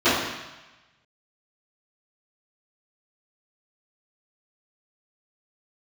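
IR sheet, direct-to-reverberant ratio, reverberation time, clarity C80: −19.5 dB, 1.1 s, 3.5 dB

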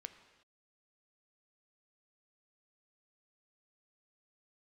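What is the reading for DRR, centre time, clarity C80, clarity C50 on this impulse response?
8.5 dB, 13 ms, 12.0 dB, 11.0 dB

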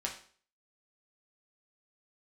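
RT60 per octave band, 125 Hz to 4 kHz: 0.45, 0.45, 0.50, 0.45, 0.45, 0.45 seconds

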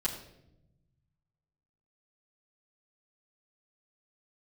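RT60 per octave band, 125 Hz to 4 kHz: 2.3, 1.5, 1.0, 0.65, 0.65, 0.60 seconds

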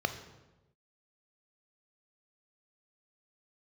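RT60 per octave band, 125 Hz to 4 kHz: 1.3, 1.1, 1.1, 1.0, 0.85, 0.75 seconds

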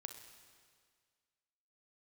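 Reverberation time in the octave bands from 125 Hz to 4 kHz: 1.9, 1.9, 1.9, 1.9, 1.8, 1.8 seconds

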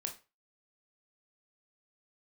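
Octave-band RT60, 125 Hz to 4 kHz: 0.30, 0.25, 0.30, 0.30, 0.30, 0.25 seconds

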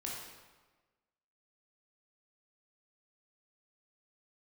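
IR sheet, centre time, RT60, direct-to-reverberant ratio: 74 ms, 1.3 s, −4.0 dB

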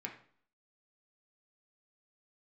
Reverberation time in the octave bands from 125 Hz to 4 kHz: 0.55, 0.60, 0.50, 0.55, 0.45, 0.45 seconds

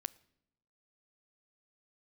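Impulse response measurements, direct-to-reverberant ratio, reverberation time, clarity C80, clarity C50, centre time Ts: 18.0 dB, non-exponential decay, 24.5 dB, 22.5 dB, 1 ms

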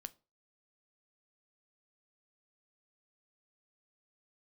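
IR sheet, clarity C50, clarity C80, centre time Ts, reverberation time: 23.0 dB, 29.5 dB, 2 ms, 0.35 s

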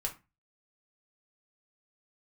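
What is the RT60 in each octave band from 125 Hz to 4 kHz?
0.40, 0.35, 0.25, 0.25, 0.25, 0.20 seconds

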